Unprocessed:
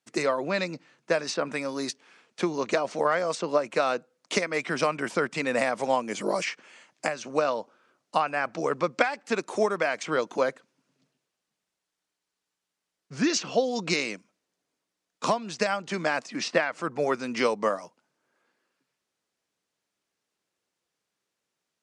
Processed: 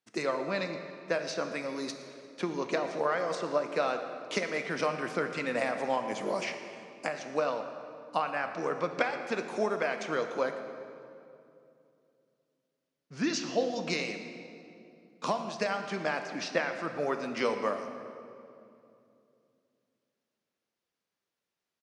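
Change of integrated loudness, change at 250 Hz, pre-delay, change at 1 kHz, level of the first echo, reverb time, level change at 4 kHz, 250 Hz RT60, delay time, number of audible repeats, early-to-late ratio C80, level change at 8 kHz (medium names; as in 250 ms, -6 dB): -5.0 dB, -4.5 dB, 9 ms, -4.5 dB, -18.5 dB, 2.7 s, -5.5 dB, 3.3 s, 117 ms, 1, 8.0 dB, -8.0 dB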